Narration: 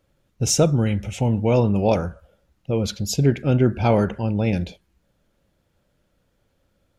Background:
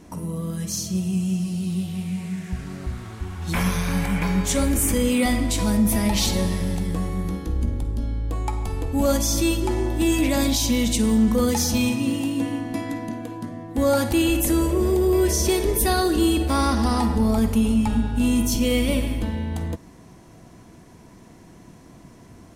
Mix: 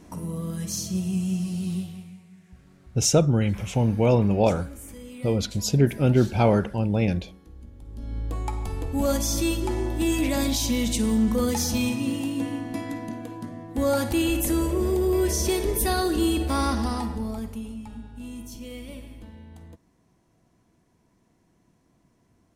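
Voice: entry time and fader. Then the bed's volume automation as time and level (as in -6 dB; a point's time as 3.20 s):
2.55 s, -1.5 dB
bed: 1.75 s -2.5 dB
2.25 s -21 dB
7.74 s -21 dB
8.18 s -3.5 dB
16.70 s -3.5 dB
17.81 s -18 dB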